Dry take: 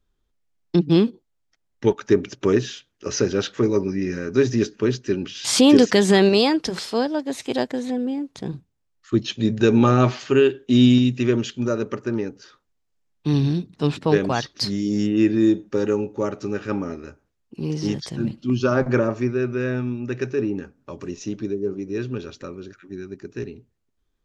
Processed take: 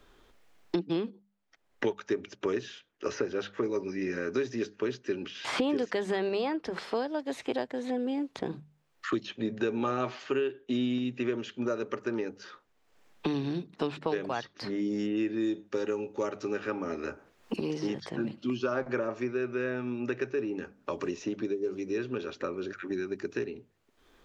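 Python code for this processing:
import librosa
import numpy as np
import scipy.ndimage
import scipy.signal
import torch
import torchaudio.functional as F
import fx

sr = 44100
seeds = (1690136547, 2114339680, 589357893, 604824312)

y = fx.band_squash(x, sr, depth_pct=70, at=(16.63, 17.61))
y = fx.bass_treble(y, sr, bass_db=-12, treble_db=-9)
y = fx.hum_notches(y, sr, base_hz=50, count=4)
y = fx.band_squash(y, sr, depth_pct=100)
y = F.gain(torch.from_numpy(y), -8.0).numpy()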